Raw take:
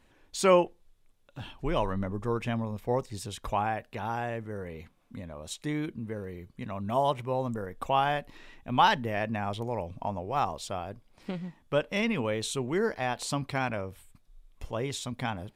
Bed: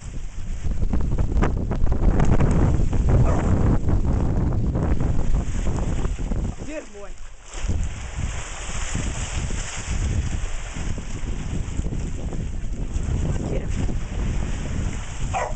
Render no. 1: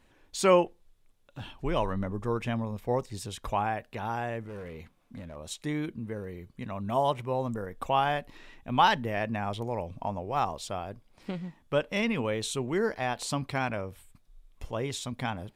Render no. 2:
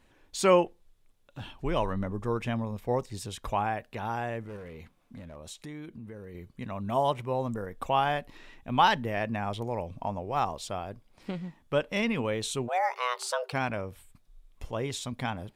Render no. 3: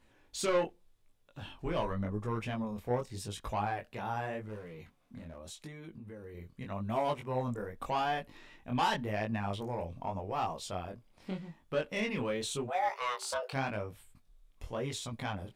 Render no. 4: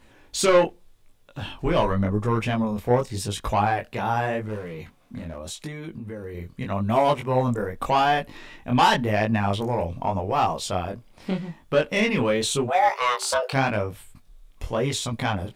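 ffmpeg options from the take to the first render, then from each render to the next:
ffmpeg -i in.wav -filter_complex "[0:a]asettb=1/sr,asplit=3[link_01][link_02][link_03];[link_01]atrim=end=4.464[link_04];[link_02]atrim=start=4.46:end=5.36,asetpts=PTS-STARTPTS,afade=type=in:duration=0.004:curve=qsin,afade=type=out:start_time=0.896:duration=0.004:curve=qsin,asoftclip=type=hard:threshold=-37dB[link_05];[link_03]atrim=start=5.356[link_06];[link_04][link_05]acrossfade=duration=0.004:curve1=hsin:curve2=qsin[link_07];[link_07][link_06]acrossfade=duration=0.004:curve1=qsin:curve2=hsin" out.wav
ffmpeg -i in.wav -filter_complex "[0:a]asettb=1/sr,asplit=3[link_01][link_02][link_03];[link_01]atrim=end=4.564[link_04];[link_02]atrim=start=4.56:end=6.35,asetpts=PTS-STARTPTS,afade=type=in:duration=0.004:curve=qsin,afade=type=out:start_time=1.786:duration=0.004:curve=qsin,acompressor=threshold=-41dB:ratio=3:attack=3.2:release=140:knee=1:detection=peak[link_05];[link_03]atrim=start=6.346[link_06];[link_04][link_05]acrossfade=duration=0.004:curve1=hsin:curve2=qsin[link_07];[link_07][link_06]acrossfade=duration=0.004:curve1=qsin:curve2=hsin,asplit=3[link_08][link_09][link_10];[link_08]afade=type=out:start_time=12.67:duration=0.02[link_11];[link_09]afreqshift=370,afade=type=in:start_time=12.67:duration=0.02,afade=type=out:start_time=13.52:duration=0.02[link_12];[link_10]afade=type=in:start_time=13.52:duration=0.02[link_13];[link_11][link_12][link_13]amix=inputs=3:normalize=0" out.wav
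ffmpeg -i in.wav -af "asoftclip=type=tanh:threshold=-21.5dB,flanger=delay=18:depth=6.6:speed=0.86" out.wav
ffmpeg -i in.wav -af "volume=12dB" out.wav

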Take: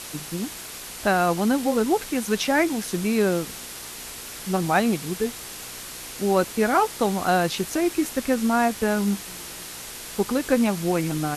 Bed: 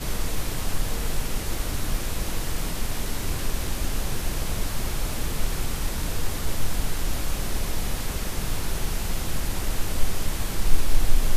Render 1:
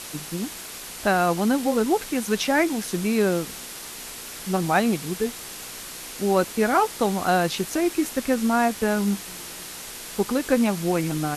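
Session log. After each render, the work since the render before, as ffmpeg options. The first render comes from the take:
ffmpeg -i in.wav -af "bandreject=frequency=60:width_type=h:width=4,bandreject=frequency=120:width_type=h:width=4" out.wav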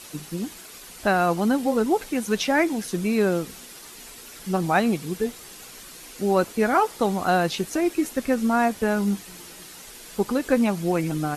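ffmpeg -i in.wav -af "afftdn=noise_reduction=8:noise_floor=-38" out.wav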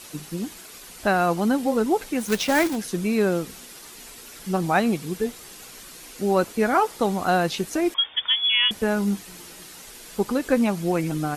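ffmpeg -i in.wav -filter_complex "[0:a]asplit=3[link_01][link_02][link_03];[link_01]afade=type=out:start_time=2.19:duration=0.02[link_04];[link_02]acrusher=bits=2:mode=log:mix=0:aa=0.000001,afade=type=in:start_time=2.19:duration=0.02,afade=type=out:start_time=2.75:duration=0.02[link_05];[link_03]afade=type=in:start_time=2.75:duration=0.02[link_06];[link_04][link_05][link_06]amix=inputs=3:normalize=0,asettb=1/sr,asplit=3[link_07][link_08][link_09];[link_07]atrim=end=7.944[link_10];[link_08]atrim=start=7.94:end=8.71,asetpts=PTS-STARTPTS,afade=type=in:duration=0.004:curve=qsin,afade=type=out:start_time=0.766:duration=0.004:curve=qsin,lowpass=frequency=3100:width_type=q:width=0.5098,lowpass=frequency=3100:width_type=q:width=0.6013,lowpass=frequency=3100:width_type=q:width=0.9,lowpass=frequency=3100:width_type=q:width=2.563,afreqshift=-3600[link_11];[link_09]atrim=start=8.706[link_12];[link_10][link_11]acrossfade=duration=0.004:curve1=hsin:curve2=qsin[link_13];[link_13][link_12]acrossfade=duration=0.004:curve1=qsin:curve2=hsin" out.wav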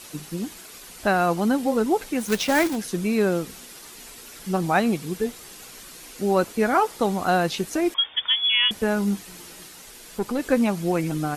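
ffmpeg -i in.wav -filter_complex "[0:a]asettb=1/sr,asplit=3[link_01][link_02][link_03];[link_01]atrim=end=9.684[link_04];[link_02]atrim=start=9.68:end=10.39,asetpts=PTS-STARTPTS,afade=type=in:duration=0.004:curve=qsin,afade=type=out:start_time=0.706:duration=0.004:curve=qsin,aeval=exprs='(tanh(7.94*val(0)+0.4)-tanh(0.4))/7.94':channel_layout=same[link_05];[link_03]atrim=start=10.386[link_06];[link_04][link_05]acrossfade=duration=0.004:curve1=hsin:curve2=qsin[link_07];[link_07][link_06]acrossfade=duration=0.004:curve1=qsin:curve2=hsin" out.wav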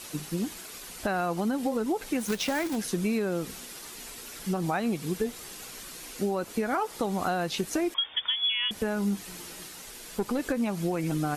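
ffmpeg -i in.wav -af "alimiter=limit=-15dB:level=0:latency=1:release=173,acompressor=threshold=-24dB:ratio=6" out.wav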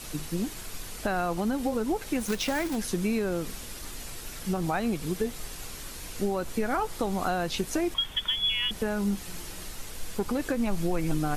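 ffmpeg -i in.wav -i bed.wav -filter_complex "[1:a]volume=-16.5dB[link_01];[0:a][link_01]amix=inputs=2:normalize=0" out.wav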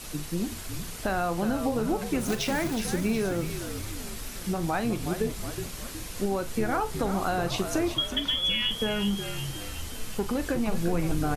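ffmpeg -i in.wav -filter_complex "[0:a]asplit=2[link_01][link_02];[link_02]adelay=41,volume=-12dB[link_03];[link_01][link_03]amix=inputs=2:normalize=0,asplit=8[link_04][link_05][link_06][link_07][link_08][link_09][link_10][link_11];[link_05]adelay=367,afreqshift=-62,volume=-8.5dB[link_12];[link_06]adelay=734,afreqshift=-124,volume=-13.7dB[link_13];[link_07]adelay=1101,afreqshift=-186,volume=-18.9dB[link_14];[link_08]adelay=1468,afreqshift=-248,volume=-24.1dB[link_15];[link_09]adelay=1835,afreqshift=-310,volume=-29.3dB[link_16];[link_10]adelay=2202,afreqshift=-372,volume=-34.5dB[link_17];[link_11]adelay=2569,afreqshift=-434,volume=-39.7dB[link_18];[link_04][link_12][link_13][link_14][link_15][link_16][link_17][link_18]amix=inputs=8:normalize=0" out.wav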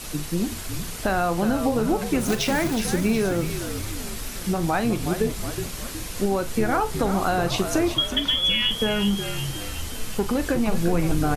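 ffmpeg -i in.wav -af "volume=5dB" out.wav

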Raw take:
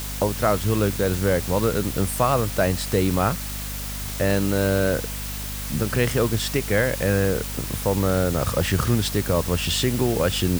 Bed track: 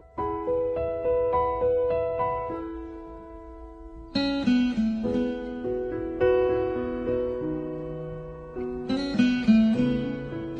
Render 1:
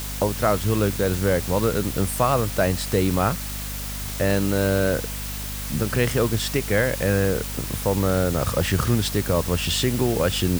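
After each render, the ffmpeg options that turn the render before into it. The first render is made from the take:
ffmpeg -i in.wav -af anull out.wav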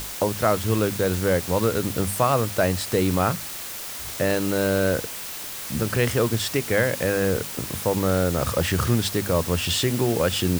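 ffmpeg -i in.wav -af "bandreject=frequency=50:width_type=h:width=6,bandreject=frequency=100:width_type=h:width=6,bandreject=frequency=150:width_type=h:width=6,bandreject=frequency=200:width_type=h:width=6,bandreject=frequency=250:width_type=h:width=6" out.wav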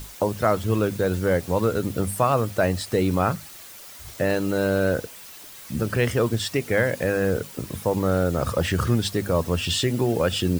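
ffmpeg -i in.wav -af "afftdn=noise_reduction=10:noise_floor=-34" out.wav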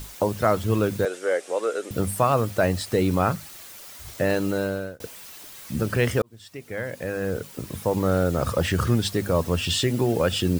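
ffmpeg -i in.wav -filter_complex "[0:a]asettb=1/sr,asplit=3[link_01][link_02][link_03];[link_01]atrim=end=1.054[link_04];[link_02]atrim=start=1.05:end=1.91,asetpts=PTS-STARTPTS,afade=type=in:duration=0.004:curve=qsin,afade=type=out:start_time=0.856:duration=0.004:curve=qsin,highpass=frequency=400:width=0.5412,highpass=frequency=400:width=1.3066,equalizer=frequency=950:width_type=q:width=4:gain=-8,equalizer=frequency=4300:width_type=q:width=4:gain=-6,equalizer=frequency=8700:width_type=q:width=4:gain=4,lowpass=frequency=9300:width=0.5412,lowpass=frequency=9300:width=1.3066[link_05];[link_03]atrim=start=1.906[link_06];[link_04][link_05]acrossfade=duration=0.004:curve1=hsin:curve2=qsin[link_07];[link_07][link_06]acrossfade=duration=0.004:curve1=qsin:curve2=hsin,asplit=3[link_08][link_09][link_10];[link_08]atrim=end=5,asetpts=PTS-STARTPTS,afade=type=out:start_time=4.46:duration=0.54[link_11];[link_09]atrim=start=5:end=6.22,asetpts=PTS-STARTPTS,afade=type=in:duration=0.004:curve=hsin,afade=type=out:start_time=1.216:duration=0.004:curve=hsin[link_12];[link_10]atrim=start=6.22,asetpts=PTS-STARTPTS,afade=type=in:duration=1.79[link_13];[link_11][link_12][link_13]concat=n=3:v=0:a=1" out.wav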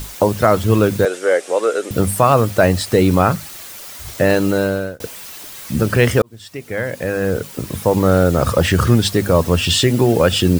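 ffmpeg -i in.wav -af "volume=8.5dB,alimiter=limit=-1dB:level=0:latency=1" out.wav

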